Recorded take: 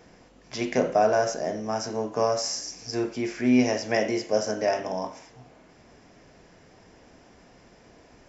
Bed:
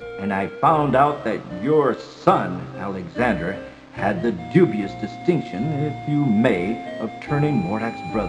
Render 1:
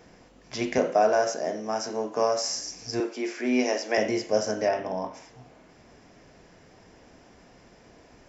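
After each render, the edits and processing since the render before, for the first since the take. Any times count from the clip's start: 0.78–2.49 HPF 220 Hz; 3–3.98 HPF 280 Hz 24 dB/oct; 4.68–5.14 air absorption 160 m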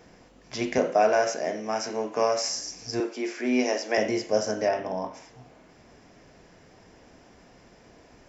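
0.99–2.49 bell 2300 Hz +8.5 dB 0.7 oct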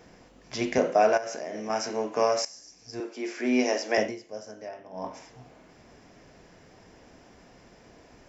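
1.17–1.7 compressor 16:1, threshold -30 dBFS; 2.45–3.42 fade in quadratic, from -16 dB; 4–5.08 dip -15 dB, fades 0.16 s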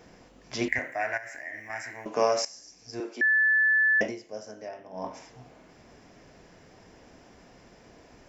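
0.68–2.06 EQ curve 120 Hz 0 dB, 190 Hz -25 dB, 290 Hz -9 dB, 430 Hz -23 dB, 740 Hz -9 dB, 1300 Hz -11 dB, 1900 Hz +14 dB, 2900 Hz -12 dB, 6100 Hz -15 dB, 9800 Hz +15 dB; 3.21–4.01 bleep 1740 Hz -19 dBFS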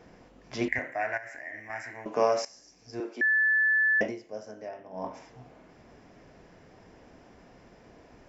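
high shelf 3800 Hz -9.5 dB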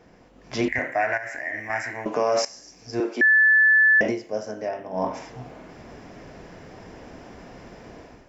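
AGC gain up to 11 dB; limiter -13 dBFS, peak gain reduction 10 dB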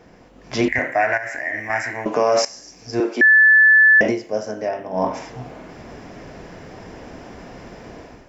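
gain +5 dB

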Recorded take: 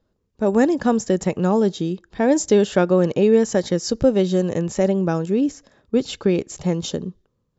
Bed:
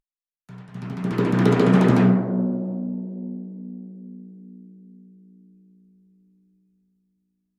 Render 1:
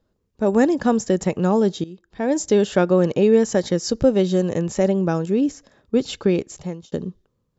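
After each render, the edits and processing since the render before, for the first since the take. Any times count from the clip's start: 1.84–2.99 fade in equal-power, from -17 dB; 6.35–6.92 fade out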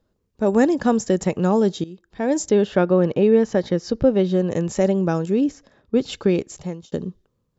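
2.49–4.51 air absorption 170 m; 5.44–6.12 air absorption 75 m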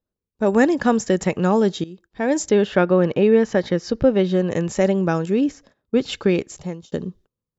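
dynamic EQ 2000 Hz, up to +6 dB, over -40 dBFS, Q 0.78; gate -48 dBFS, range -16 dB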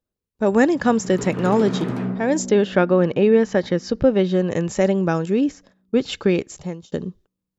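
add bed -9 dB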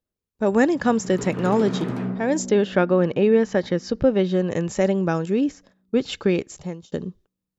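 gain -2 dB

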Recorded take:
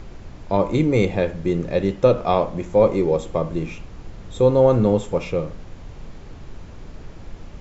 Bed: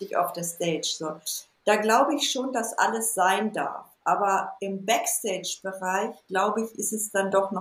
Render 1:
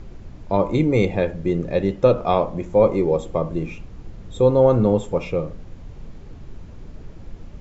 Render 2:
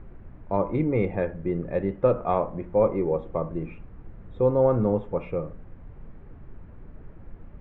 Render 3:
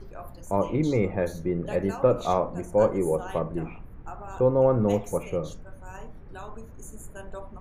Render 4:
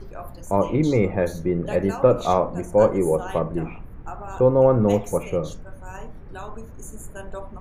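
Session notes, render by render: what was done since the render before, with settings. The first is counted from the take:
denoiser 6 dB, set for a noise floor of -40 dBFS
ladder low-pass 2300 Hz, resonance 25%
add bed -18 dB
gain +4.5 dB

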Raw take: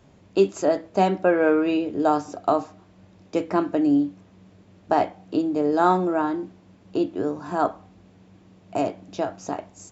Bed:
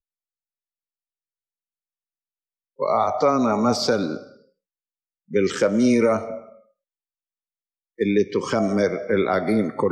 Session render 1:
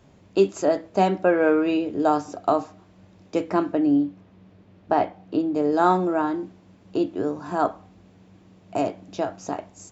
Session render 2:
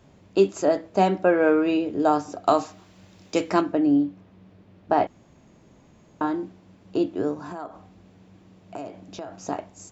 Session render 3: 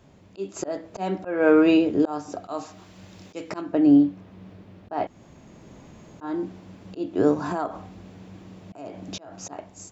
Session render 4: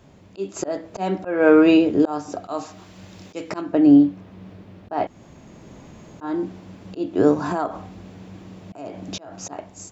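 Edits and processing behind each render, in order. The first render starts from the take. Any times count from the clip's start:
3.72–5.55 air absorption 130 m
2.47–3.61 high shelf 2100 Hz +11.5 dB; 5.07–6.21 room tone; 7.34–9.46 compressor 5:1, threshold -32 dBFS
AGC gain up to 8 dB; auto swell 0.357 s
gain +3.5 dB

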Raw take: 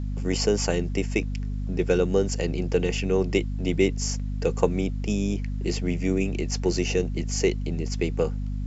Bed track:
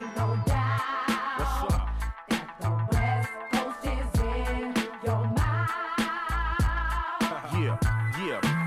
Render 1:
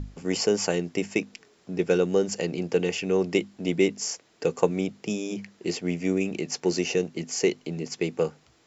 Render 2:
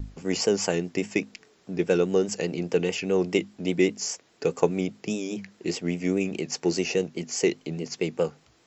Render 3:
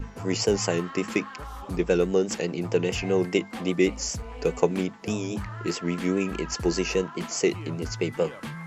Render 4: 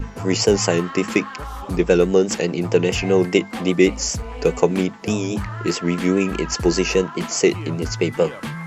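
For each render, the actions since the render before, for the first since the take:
notches 50/100/150/200/250 Hz
vibrato 4.9 Hz 70 cents
add bed track -10.5 dB
gain +7 dB; limiter -1 dBFS, peak gain reduction 2 dB

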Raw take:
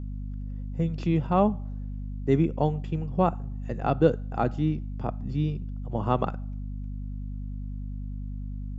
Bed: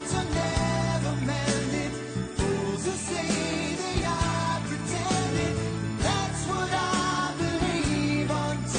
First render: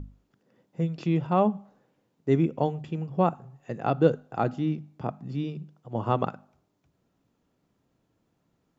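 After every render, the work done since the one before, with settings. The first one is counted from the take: notches 50/100/150/200/250 Hz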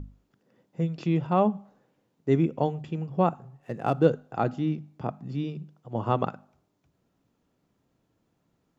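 3.43–4.06 median filter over 9 samples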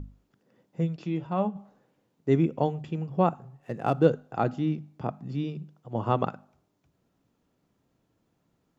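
0.96–1.56 resonator 64 Hz, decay 0.17 s, harmonics odd, mix 70%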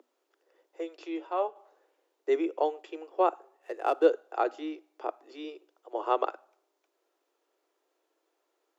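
steep high-pass 330 Hz 72 dB/oct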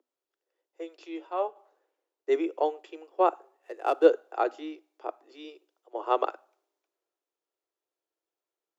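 three-band expander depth 40%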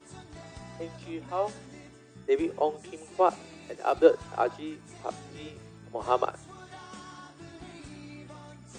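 add bed -19.5 dB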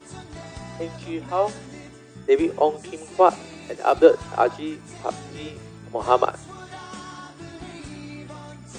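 gain +7.5 dB; limiter -2 dBFS, peak gain reduction 2.5 dB

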